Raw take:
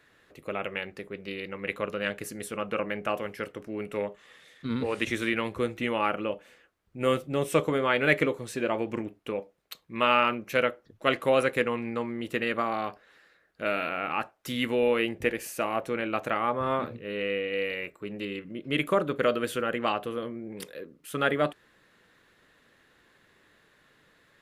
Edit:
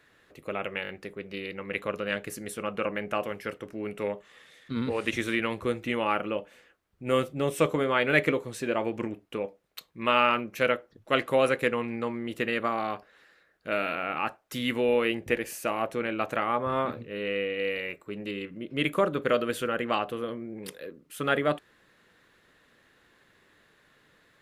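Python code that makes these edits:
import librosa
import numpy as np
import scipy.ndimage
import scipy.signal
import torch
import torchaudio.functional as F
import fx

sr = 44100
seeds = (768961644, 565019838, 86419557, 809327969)

y = fx.edit(x, sr, fx.stutter(start_s=0.83, slice_s=0.02, count=4), tone=tone)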